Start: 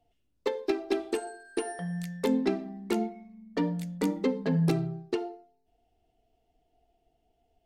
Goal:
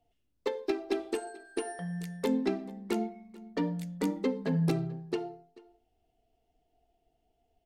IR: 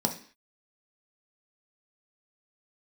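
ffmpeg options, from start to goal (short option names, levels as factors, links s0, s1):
-af "aecho=1:1:437:0.0794,volume=0.75"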